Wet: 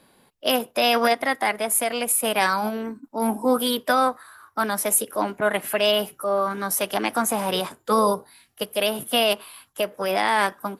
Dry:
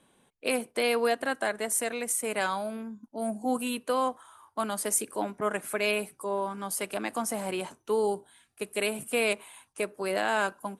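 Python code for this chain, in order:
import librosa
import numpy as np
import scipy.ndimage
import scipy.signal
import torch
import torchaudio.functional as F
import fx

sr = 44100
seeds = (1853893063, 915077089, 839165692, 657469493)

p1 = fx.rider(x, sr, range_db=10, speed_s=2.0)
p2 = x + (p1 * librosa.db_to_amplitude(2.5))
y = fx.formant_shift(p2, sr, semitones=3)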